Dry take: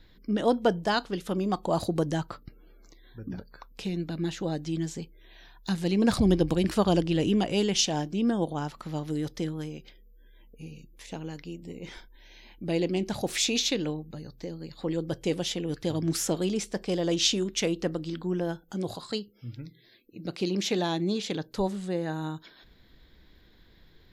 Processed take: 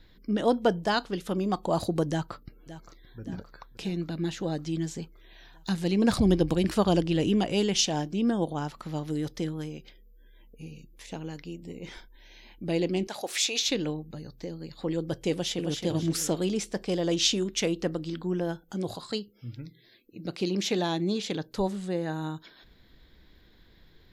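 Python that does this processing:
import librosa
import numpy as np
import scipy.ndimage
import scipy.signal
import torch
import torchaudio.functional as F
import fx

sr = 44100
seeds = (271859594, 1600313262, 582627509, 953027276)

y = fx.echo_throw(x, sr, start_s=2.09, length_s=1.11, ms=570, feedback_pct=65, wet_db=-15.0)
y = fx.highpass(y, sr, hz=510.0, slope=12, at=(13.07, 13.69))
y = fx.echo_throw(y, sr, start_s=15.31, length_s=0.43, ms=270, feedback_pct=35, wet_db=-5.0)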